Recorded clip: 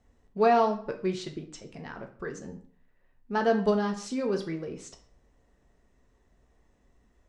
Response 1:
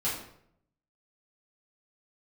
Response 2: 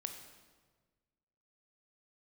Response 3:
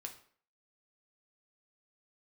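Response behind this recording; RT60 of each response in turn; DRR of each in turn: 3; 0.70, 1.5, 0.50 s; -10.5, 5.0, 2.5 dB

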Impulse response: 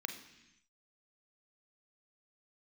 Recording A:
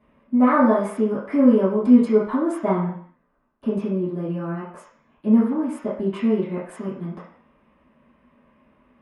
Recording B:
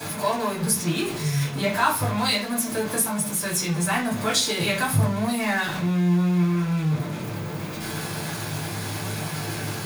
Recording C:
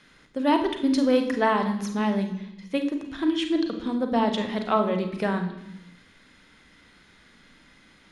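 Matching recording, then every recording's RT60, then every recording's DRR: C; 0.60, 0.45, 0.90 s; -13.5, -15.0, 6.0 dB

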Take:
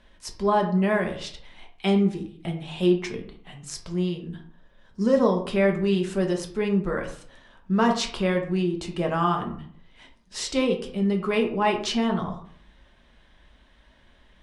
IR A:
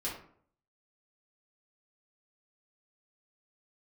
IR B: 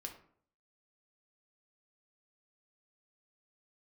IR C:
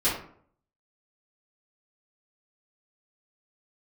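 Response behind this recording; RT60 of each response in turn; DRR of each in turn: B; 0.55, 0.60, 0.55 s; -7.5, 2.5, -13.0 dB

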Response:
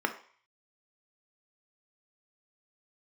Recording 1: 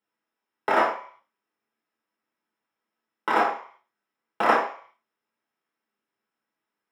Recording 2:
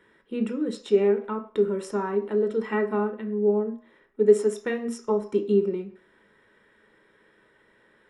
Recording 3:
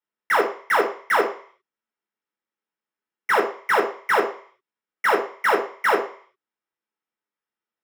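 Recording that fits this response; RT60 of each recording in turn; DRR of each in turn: 2; 0.50, 0.50, 0.50 s; -4.0, 5.5, 0.5 dB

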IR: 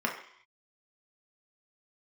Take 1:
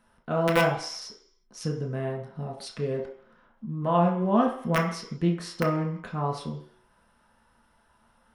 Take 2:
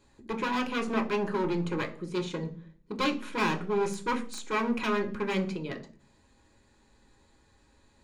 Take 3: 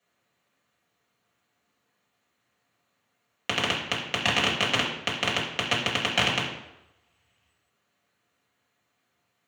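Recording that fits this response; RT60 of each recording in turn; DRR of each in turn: 1; 0.60, 0.40, 0.90 s; -1.0, 2.0, -6.0 dB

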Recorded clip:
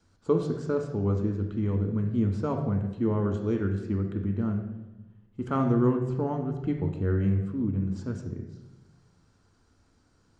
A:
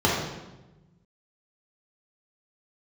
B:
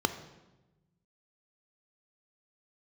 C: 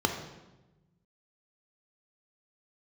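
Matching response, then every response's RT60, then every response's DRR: C; 1.1, 1.1, 1.1 s; -6.0, 9.0, 3.5 dB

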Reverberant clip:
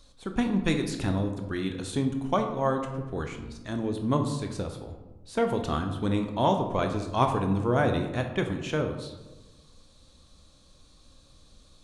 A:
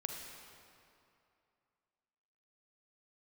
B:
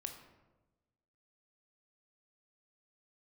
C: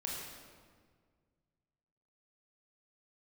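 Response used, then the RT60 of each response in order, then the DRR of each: B; 2.6, 1.1, 1.8 s; 2.0, 4.5, -3.0 dB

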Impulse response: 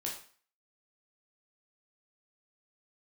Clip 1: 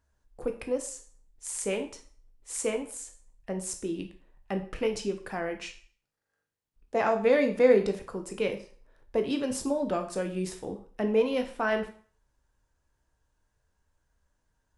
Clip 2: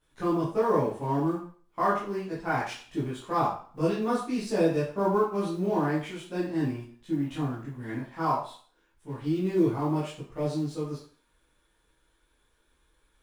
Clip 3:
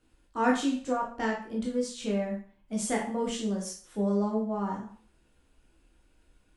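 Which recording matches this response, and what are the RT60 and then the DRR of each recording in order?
3; 0.45, 0.45, 0.45 s; 5.5, -9.5, -2.5 dB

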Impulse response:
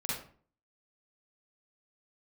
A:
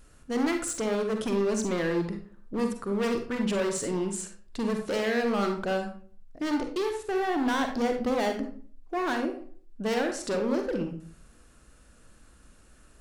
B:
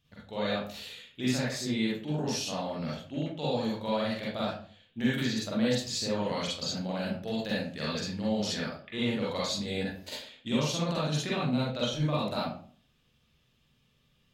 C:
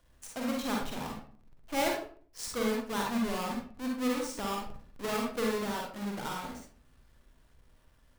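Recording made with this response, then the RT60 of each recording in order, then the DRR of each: B; 0.45, 0.45, 0.45 s; 4.0, -7.0, -1.5 dB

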